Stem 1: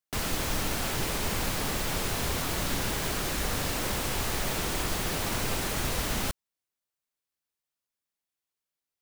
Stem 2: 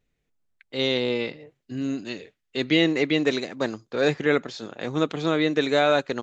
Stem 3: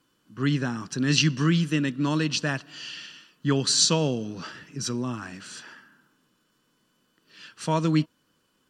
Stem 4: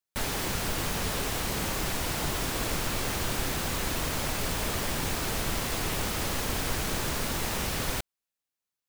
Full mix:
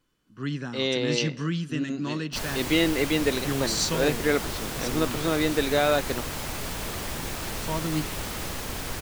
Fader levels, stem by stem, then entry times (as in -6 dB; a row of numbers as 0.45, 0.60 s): -11.0, -2.5, -6.5, -3.0 dB; 2.20, 0.00, 0.00, 2.20 s